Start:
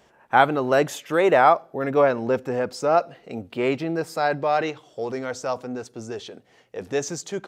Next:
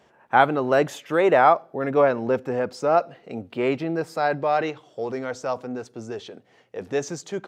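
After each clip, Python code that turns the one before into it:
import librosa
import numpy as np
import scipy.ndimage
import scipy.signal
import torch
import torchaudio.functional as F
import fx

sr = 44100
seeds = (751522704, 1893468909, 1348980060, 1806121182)

y = scipy.signal.sosfilt(scipy.signal.butter(2, 75.0, 'highpass', fs=sr, output='sos'), x)
y = fx.high_shelf(y, sr, hz=4800.0, db=-7.5)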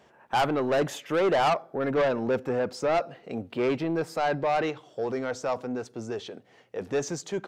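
y = 10.0 ** (-19.5 / 20.0) * np.tanh(x / 10.0 ** (-19.5 / 20.0))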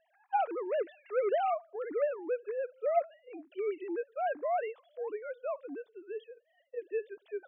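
y = fx.sine_speech(x, sr)
y = y * 10.0 ** (-7.0 / 20.0)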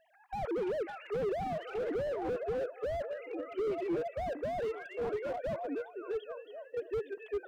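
y = fx.echo_stepped(x, sr, ms=271, hz=2600.0, octaves=-0.7, feedback_pct=70, wet_db=-6.0)
y = fx.slew_limit(y, sr, full_power_hz=7.7)
y = y * 10.0 ** (4.5 / 20.0)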